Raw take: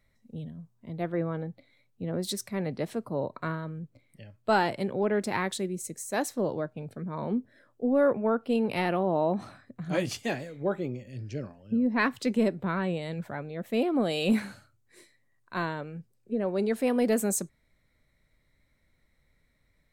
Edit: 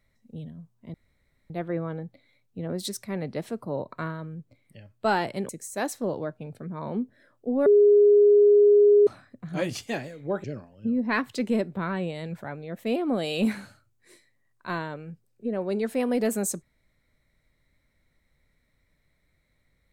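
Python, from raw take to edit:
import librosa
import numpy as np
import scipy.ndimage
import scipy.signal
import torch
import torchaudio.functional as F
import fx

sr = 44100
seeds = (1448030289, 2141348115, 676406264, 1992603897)

y = fx.edit(x, sr, fx.insert_room_tone(at_s=0.94, length_s=0.56),
    fx.cut(start_s=4.93, length_s=0.92),
    fx.bleep(start_s=8.02, length_s=1.41, hz=412.0, db=-13.0),
    fx.cut(start_s=10.8, length_s=0.51), tone=tone)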